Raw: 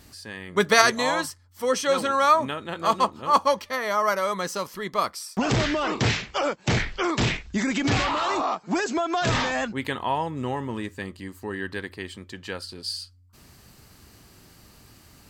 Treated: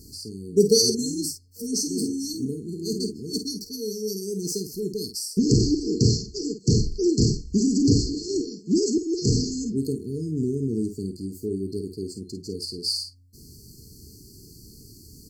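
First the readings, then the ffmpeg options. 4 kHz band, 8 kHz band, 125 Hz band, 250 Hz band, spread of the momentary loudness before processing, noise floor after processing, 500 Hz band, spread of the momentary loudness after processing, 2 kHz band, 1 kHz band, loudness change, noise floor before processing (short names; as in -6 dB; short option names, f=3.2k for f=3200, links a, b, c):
+1.0 dB, +5.5 dB, +5.0 dB, +5.5 dB, 15 LU, -49 dBFS, -0.5 dB, 12 LU, under -40 dB, under -40 dB, -0.5 dB, -54 dBFS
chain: -filter_complex "[0:a]afftfilt=real='re*(1-between(b*sr/4096,470,4200))':imag='im*(1-between(b*sr/4096,470,4200))':win_size=4096:overlap=0.75,asplit=2[a][b];[b]aecho=0:1:37|51:0.168|0.355[c];[a][c]amix=inputs=2:normalize=0,volume=5dB"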